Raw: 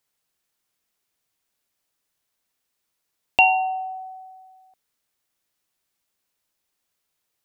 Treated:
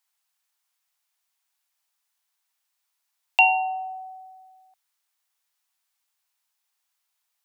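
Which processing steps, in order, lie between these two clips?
Chebyshev high-pass 810 Hz, order 3

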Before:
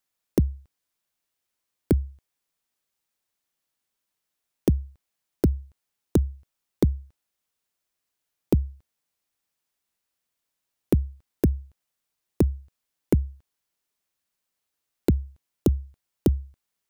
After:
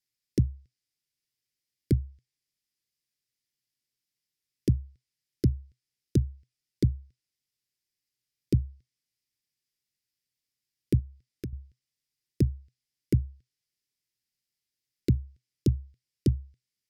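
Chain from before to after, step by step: treble ducked by the level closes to 1500 Hz, closed at -17.5 dBFS; thirty-one-band EQ 125 Hz +12 dB, 2000 Hz +4 dB, 5000 Hz +9 dB; 10.99–11.53 compressor 3:1, threshold -32 dBFS, peak gain reduction 14.5 dB; Butterworth band-stop 890 Hz, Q 0.6; gain -5.5 dB

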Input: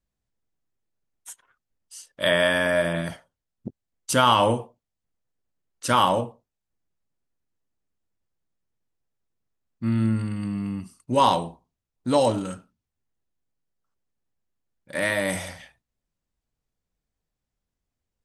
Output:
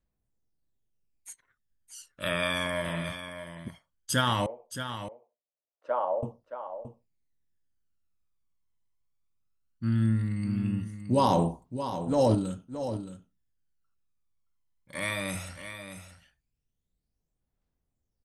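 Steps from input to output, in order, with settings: 11.27–12.35 transient shaper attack -11 dB, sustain +6 dB; phaser 0.17 Hz, delay 1 ms, feedback 66%; 4.46–6.23 ladder band-pass 680 Hz, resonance 60%; echo 0.622 s -10 dB; gain -7 dB

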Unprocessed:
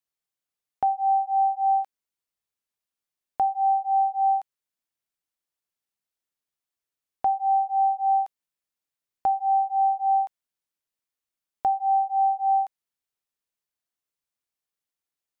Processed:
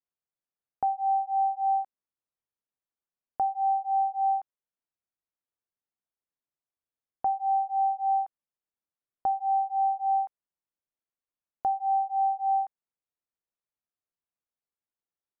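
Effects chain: LPF 1400 Hz 12 dB/oct; gain -3.5 dB

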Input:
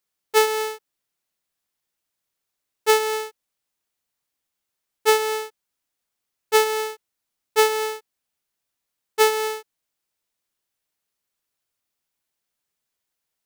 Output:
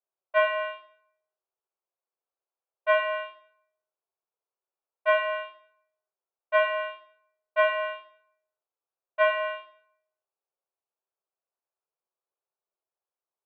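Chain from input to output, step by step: Wiener smoothing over 25 samples; plate-style reverb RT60 0.6 s, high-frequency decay 0.95×, pre-delay 0 ms, DRR 1 dB; mistuned SSB +190 Hz 180–2500 Hz; gain -4.5 dB

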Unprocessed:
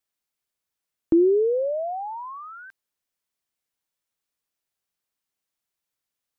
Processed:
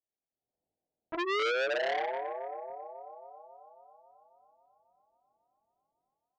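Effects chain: elliptic low-pass 760 Hz, stop band 50 dB; tilt +1.5 dB/oct; AGC gain up to 15.5 dB; limiter -8.5 dBFS, peak gain reduction 6.5 dB; compressor 1.5:1, threshold -42 dBFS, peak gain reduction 11 dB; chorus 1.2 Hz, delay 18.5 ms, depth 7.5 ms; thinning echo 0.272 s, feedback 79%, high-pass 460 Hz, level -7 dB; core saturation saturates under 2100 Hz

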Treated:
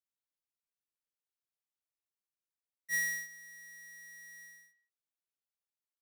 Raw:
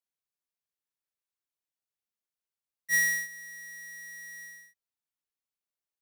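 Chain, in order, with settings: speakerphone echo 0.16 s, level -15 dB; gain -7.5 dB

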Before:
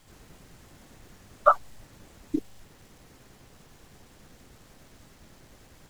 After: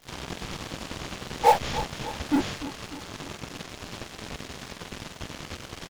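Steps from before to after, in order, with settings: inharmonic rescaling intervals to 76%; in parallel at -10 dB: fuzz box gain 48 dB, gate -54 dBFS; on the sum: feedback echo 0.297 s, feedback 56%, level -14 dB; crackle 220/s -44 dBFS

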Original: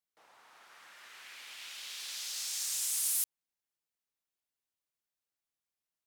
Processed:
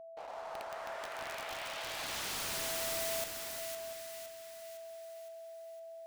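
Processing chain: band-pass sweep 650 Hz -> 4700 Hz, 1.92–3.73; sample leveller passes 5; whine 660 Hz -52 dBFS; wrapped overs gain 39.5 dB; on a send: split-band echo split 1400 Hz, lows 0.345 s, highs 0.511 s, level -5.5 dB; on the sum: gain +4.5 dB

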